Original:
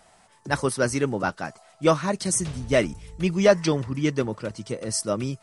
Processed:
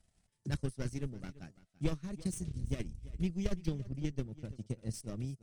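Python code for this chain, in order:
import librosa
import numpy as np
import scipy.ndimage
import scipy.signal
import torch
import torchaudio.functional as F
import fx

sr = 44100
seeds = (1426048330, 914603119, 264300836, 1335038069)

p1 = fx.clip_asym(x, sr, top_db=-26.5, bottom_db=-9.5)
p2 = fx.tone_stack(p1, sr, knobs='10-0-1')
p3 = fx.transient(p2, sr, attack_db=10, sustain_db=-10)
p4 = p3 + fx.echo_single(p3, sr, ms=338, db=-18.5, dry=0)
y = p4 * 10.0 ** (3.0 / 20.0)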